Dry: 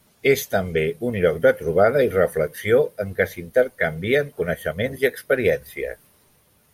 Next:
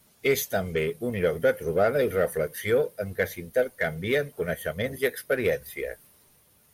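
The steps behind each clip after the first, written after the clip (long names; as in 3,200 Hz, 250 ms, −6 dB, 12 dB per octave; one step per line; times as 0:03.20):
high-shelf EQ 4,600 Hz +5.5 dB
in parallel at −5 dB: soft clipping −20 dBFS, distortion −7 dB
on the sum: level −8 dB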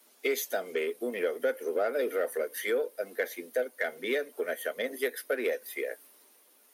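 Butterworth high-pass 250 Hz 48 dB per octave
downward compressor 2 to 1, threshold −30 dBFS, peak gain reduction 7.5 dB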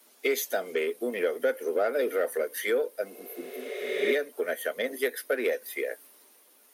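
healed spectral selection 0:03.15–0:04.09, 380–11,000 Hz both
level +2.5 dB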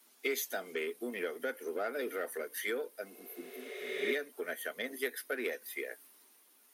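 parametric band 540 Hz −8.5 dB 0.64 octaves
level −5 dB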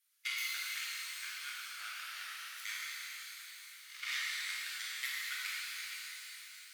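harmonic generator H 7 −15 dB, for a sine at −19.5 dBFS
inverse Chebyshev high-pass filter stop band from 330 Hz, stop band 70 dB
reverb with rising layers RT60 3.9 s, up +12 semitones, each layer −8 dB, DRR −7.5 dB
level −3.5 dB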